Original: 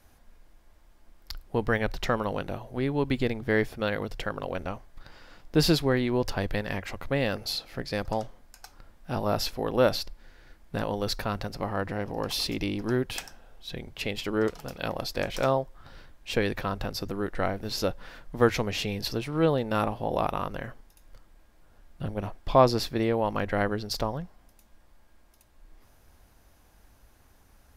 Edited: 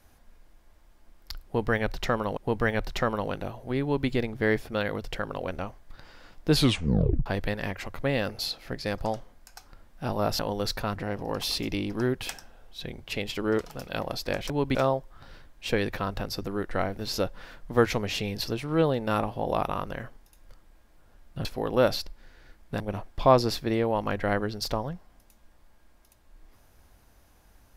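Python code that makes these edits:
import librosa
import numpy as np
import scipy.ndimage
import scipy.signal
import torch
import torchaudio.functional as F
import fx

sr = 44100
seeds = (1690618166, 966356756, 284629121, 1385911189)

y = fx.edit(x, sr, fx.repeat(start_s=1.44, length_s=0.93, count=2),
    fx.duplicate(start_s=2.9, length_s=0.25, to_s=15.39),
    fx.tape_stop(start_s=5.59, length_s=0.74),
    fx.move(start_s=9.46, length_s=1.35, to_s=22.09),
    fx.cut(start_s=11.38, length_s=0.47), tone=tone)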